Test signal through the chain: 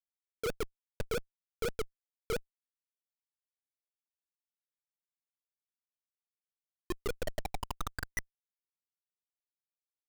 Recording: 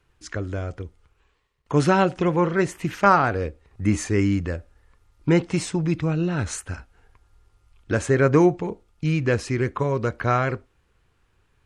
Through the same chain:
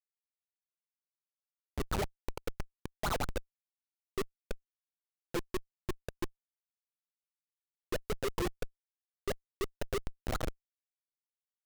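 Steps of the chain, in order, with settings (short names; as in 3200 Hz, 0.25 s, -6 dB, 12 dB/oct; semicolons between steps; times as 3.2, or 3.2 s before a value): tape spacing loss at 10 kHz 44 dB; wah 5.9 Hz 370–2000 Hz, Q 9.6; Schmitt trigger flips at -31.5 dBFS; gain +8 dB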